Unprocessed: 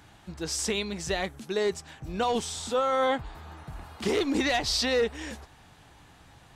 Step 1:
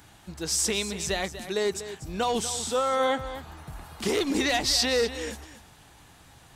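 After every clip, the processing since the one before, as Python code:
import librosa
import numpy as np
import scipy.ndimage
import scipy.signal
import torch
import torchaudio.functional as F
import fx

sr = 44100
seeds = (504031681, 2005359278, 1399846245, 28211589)

y = fx.high_shelf(x, sr, hz=6500.0, db=10.5)
y = y + 10.0 ** (-12.5 / 20.0) * np.pad(y, (int(242 * sr / 1000.0), 0))[:len(y)]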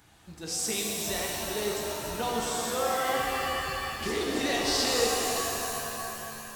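y = fx.rev_shimmer(x, sr, seeds[0], rt60_s=3.1, semitones=7, shimmer_db=-2, drr_db=-1.0)
y = y * librosa.db_to_amplitude(-7.0)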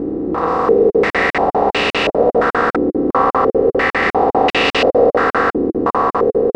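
y = fx.bin_compress(x, sr, power=0.2)
y = fx.buffer_crackle(y, sr, first_s=0.9, period_s=0.2, block=2048, kind='zero')
y = fx.filter_held_lowpass(y, sr, hz=2.9, low_hz=330.0, high_hz=2700.0)
y = y * librosa.db_to_amplitude(4.0)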